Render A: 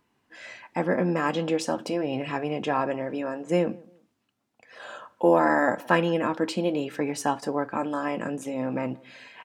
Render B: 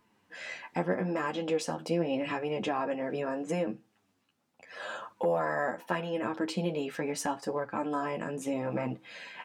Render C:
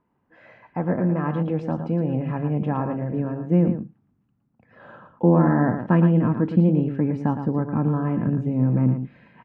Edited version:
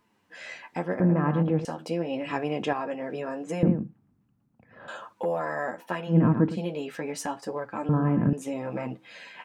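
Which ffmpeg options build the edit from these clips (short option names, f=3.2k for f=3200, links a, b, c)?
-filter_complex "[2:a]asplit=4[a][b][c][d];[1:a]asplit=6[e][f][g][h][i][j];[e]atrim=end=1.002[k];[a]atrim=start=0.998:end=1.652[l];[f]atrim=start=1.648:end=2.332[m];[0:a]atrim=start=2.328:end=2.732[n];[g]atrim=start=2.728:end=3.632[o];[b]atrim=start=3.628:end=4.882[p];[h]atrim=start=4.878:end=6.17[q];[c]atrim=start=6.07:end=6.59[r];[i]atrim=start=6.49:end=7.892[s];[d]atrim=start=7.888:end=8.332[t];[j]atrim=start=8.328[u];[k][l]acrossfade=d=0.004:c1=hsin:c2=hsin[v];[v][m]acrossfade=d=0.004:c1=hsin:c2=hsin[w];[w][n]acrossfade=d=0.004:c1=hsin:c2=hsin[x];[x][o]acrossfade=d=0.004:c1=hsin:c2=hsin[y];[y][p]acrossfade=d=0.004:c1=hsin:c2=hsin[z];[z][q]acrossfade=d=0.004:c1=hsin:c2=hsin[aa];[aa][r]acrossfade=d=0.1:c1=tri:c2=tri[ab];[ab][s]acrossfade=d=0.1:c1=tri:c2=tri[ac];[ac][t]acrossfade=d=0.004:c1=hsin:c2=hsin[ad];[ad][u]acrossfade=d=0.004:c1=hsin:c2=hsin"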